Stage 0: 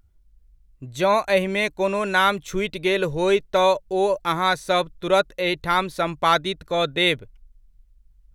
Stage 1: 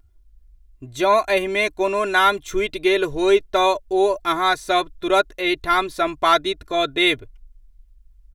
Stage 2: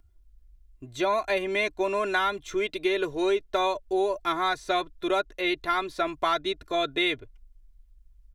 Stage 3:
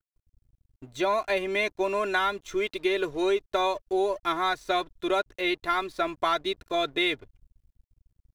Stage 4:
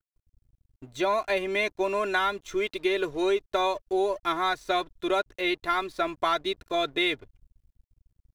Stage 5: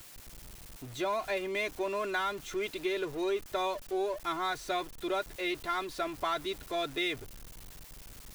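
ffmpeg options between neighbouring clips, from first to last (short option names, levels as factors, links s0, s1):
-af "aecho=1:1:2.9:0.74"
-filter_complex "[0:a]acrossover=split=190|6800[s0][s1][s2];[s0]acompressor=threshold=0.00708:ratio=4[s3];[s1]acompressor=threshold=0.126:ratio=4[s4];[s2]acompressor=threshold=0.00178:ratio=4[s5];[s3][s4][s5]amix=inputs=3:normalize=0,volume=0.631"
-af "aeval=exprs='sgn(val(0))*max(abs(val(0))-0.00251,0)':c=same"
-af anull
-af "aeval=exprs='val(0)+0.5*0.0266*sgn(val(0))':c=same,volume=0.398"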